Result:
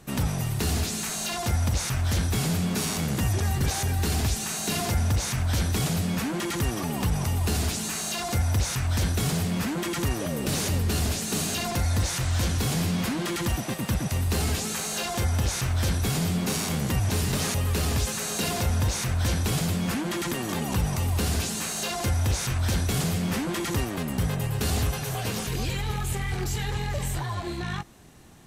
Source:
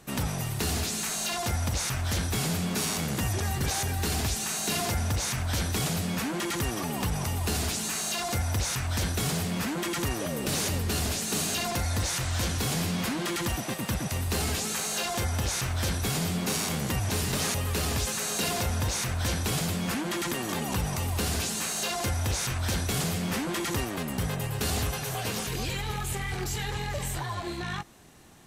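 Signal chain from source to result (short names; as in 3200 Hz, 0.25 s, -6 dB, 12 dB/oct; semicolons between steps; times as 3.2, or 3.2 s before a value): low shelf 260 Hz +5.5 dB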